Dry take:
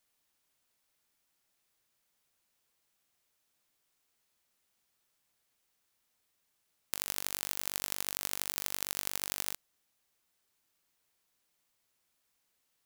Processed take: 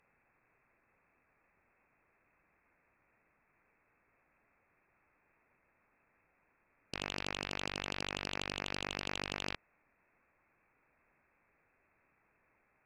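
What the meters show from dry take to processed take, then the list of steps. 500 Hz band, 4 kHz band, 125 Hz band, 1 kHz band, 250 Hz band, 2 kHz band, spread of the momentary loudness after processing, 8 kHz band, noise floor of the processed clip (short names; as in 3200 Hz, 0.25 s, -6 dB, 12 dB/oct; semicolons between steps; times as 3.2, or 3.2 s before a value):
+6.0 dB, -0.5 dB, +7.0 dB, +3.5 dB, +7.5 dB, +3.5 dB, 4 LU, -14.0 dB, -76 dBFS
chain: inverted band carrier 2600 Hz; sine folder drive 11 dB, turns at -22 dBFS; gain -2.5 dB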